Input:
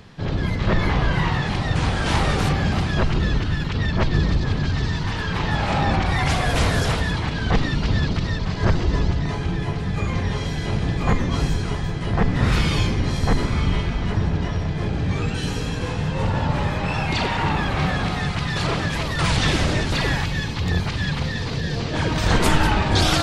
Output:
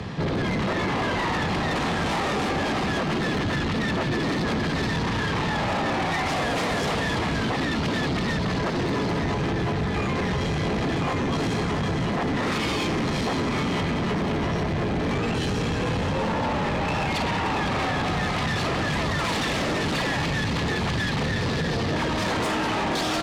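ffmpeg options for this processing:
-filter_complex "[0:a]acrossover=split=100[s0][s1];[s0]acrusher=samples=21:mix=1:aa=0.000001[s2];[s2][s1]amix=inputs=2:normalize=0,afftfilt=real='re*lt(hypot(re,im),0.562)':imag='im*lt(hypot(re,im),0.562)':win_size=1024:overlap=0.75,alimiter=limit=0.106:level=0:latency=1:release=102,aecho=1:1:513:0.355,acompressor=threshold=0.0355:ratio=6,highpass=64,aemphasis=mode=reproduction:type=75fm,acontrast=68,equalizer=f=8300:w=0.72:g=5,bandreject=f=1500:w=12,asoftclip=type=tanh:threshold=0.0355,volume=2.24"

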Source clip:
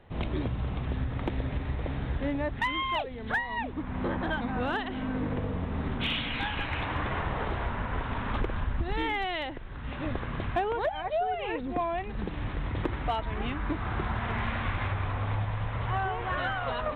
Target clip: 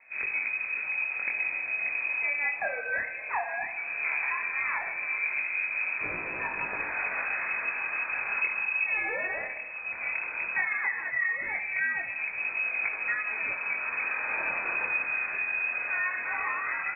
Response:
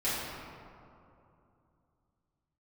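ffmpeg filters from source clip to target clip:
-filter_complex "[0:a]aecho=1:1:74|148|222|296|370|444|518:0.237|0.14|0.0825|0.0487|0.0287|0.017|0.01,lowpass=f=2200:t=q:w=0.5098,lowpass=f=2200:t=q:w=0.6013,lowpass=f=2200:t=q:w=0.9,lowpass=f=2200:t=q:w=2.563,afreqshift=-2600,asplit=2[s0][s1];[1:a]atrim=start_sample=2205[s2];[s1][s2]afir=irnorm=-1:irlink=0,volume=0.0794[s3];[s0][s3]amix=inputs=2:normalize=0,flanger=delay=19.5:depth=7.7:speed=0.16,volume=1.19"

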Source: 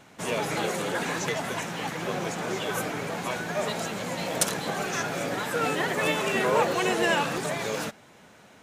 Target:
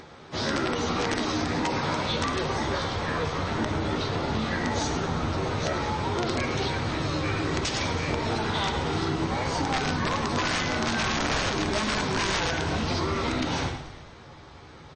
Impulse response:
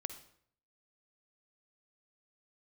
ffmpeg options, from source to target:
-filter_complex "[0:a]aeval=exprs='(mod(3.35*val(0)+1,2)-1)/3.35':c=same,aecho=1:1:7.4:0.39,asetrate=25442,aresample=44100,aeval=exprs='(mod(7.94*val(0)+1,2)-1)/7.94':c=same,asplit=7[s0][s1][s2][s3][s4][s5][s6];[s1]adelay=108,afreqshift=-41,volume=0.158[s7];[s2]adelay=216,afreqshift=-82,volume=0.0977[s8];[s3]adelay=324,afreqshift=-123,volume=0.061[s9];[s4]adelay=432,afreqshift=-164,volume=0.0376[s10];[s5]adelay=540,afreqshift=-205,volume=0.0234[s11];[s6]adelay=648,afreqshift=-246,volume=0.0145[s12];[s0][s7][s8][s9][s10][s11][s12]amix=inputs=7:normalize=0,asubboost=boost=2.5:cutoff=140[s13];[1:a]atrim=start_sample=2205[s14];[s13][s14]afir=irnorm=-1:irlink=0,acompressor=mode=upward:threshold=0.00355:ratio=2.5,lowshelf=f=90:g=-9,bandreject=f=7400:w=6.4,acompressor=threshold=0.0316:ratio=10,volume=2.37" -ar 22050 -c:a libmp3lame -b:a 32k

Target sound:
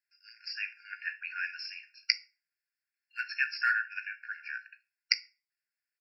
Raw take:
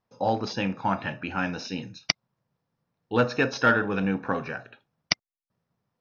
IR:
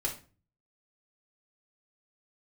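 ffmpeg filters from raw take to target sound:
-filter_complex "[0:a]asplit=2[s0][s1];[s1]adelay=17,volume=0.224[s2];[s0][s2]amix=inputs=2:normalize=0,asplit=2[s3][s4];[1:a]atrim=start_sample=2205,highshelf=f=2800:g=10.5[s5];[s4][s5]afir=irnorm=-1:irlink=0,volume=0.126[s6];[s3][s6]amix=inputs=2:normalize=0,afftfilt=real='re*eq(mod(floor(b*sr/1024/1400),2),1)':imag='im*eq(mod(floor(b*sr/1024/1400),2),1)':win_size=1024:overlap=0.75,volume=0.708"

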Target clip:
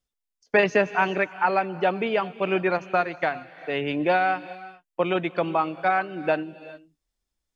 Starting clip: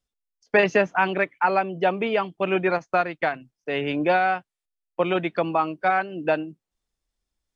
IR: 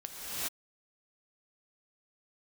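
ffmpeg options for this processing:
-filter_complex "[0:a]asplit=2[s0][s1];[1:a]atrim=start_sample=2205,highshelf=f=4000:g=11.5[s2];[s1][s2]afir=irnorm=-1:irlink=0,volume=0.0841[s3];[s0][s3]amix=inputs=2:normalize=0,volume=0.841"

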